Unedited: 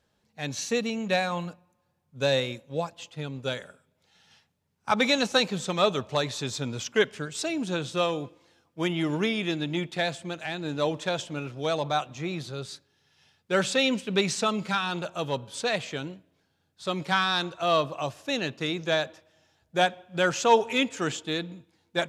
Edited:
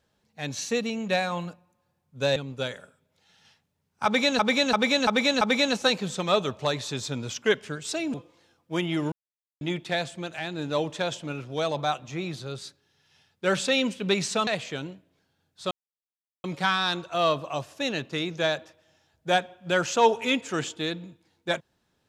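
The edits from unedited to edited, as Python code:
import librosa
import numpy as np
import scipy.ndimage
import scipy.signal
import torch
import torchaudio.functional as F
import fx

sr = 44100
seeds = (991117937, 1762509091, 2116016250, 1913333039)

y = fx.edit(x, sr, fx.cut(start_s=2.36, length_s=0.86),
    fx.repeat(start_s=4.91, length_s=0.34, count=5),
    fx.cut(start_s=7.64, length_s=0.57),
    fx.silence(start_s=9.19, length_s=0.49),
    fx.cut(start_s=14.54, length_s=1.14),
    fx.insert_silence(at_s=16.92, length_s=0.73), tone=tone)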